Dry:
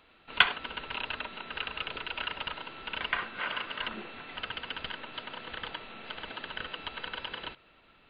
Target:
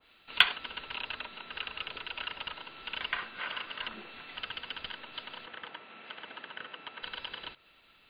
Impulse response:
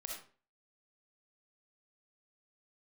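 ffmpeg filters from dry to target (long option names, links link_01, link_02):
-filter_complex "[0:a]crystalizer=i=5.5:c=0,asettb=1/sr,asplit=3[link_01][link_02][link_03];[link_01]atrim=end=5.464[link_04];[link_02]atrim=start=5.46:end=7.03,asetpts=PTS-STARTPTS,afade=type=in:duration=0.004:curve=qsin,afade=type=out:start_time=1.566:duration=0.004:curve=qsin,highpass=170,lowpass=2300[link_05];[link_03]atrim=start=7.026[link_06];[link_04][link_05]acrossfade=duration=0.004:curve1=hsin:curve2=qsin[link_07];[link_07][link_06]acrossfade=duration=0.004:curve1=qsin:curve2=hsin,adynamicequalizer=threshold=0.00891:dfrequency=1800:dqfactor=0.7:tfrequency=1800:tqfactor=0.7:attack=5:release=100:ratio=0.375:range=2.5:mode=cutabove:tftype=highshelf,volume=-6.5dB"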